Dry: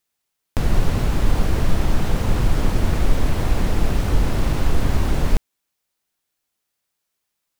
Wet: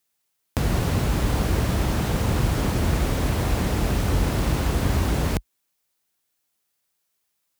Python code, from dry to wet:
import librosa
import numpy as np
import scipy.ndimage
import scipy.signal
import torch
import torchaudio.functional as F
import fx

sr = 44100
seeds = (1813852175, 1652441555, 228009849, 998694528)

y = scipy.signal.sosfilt(scipy.signal.butter(4, 47.0, 'highpass', fs=sr, output='sos'), x)
y = fx.high_shelf(y, sr, hz=6900.0, db=4.5)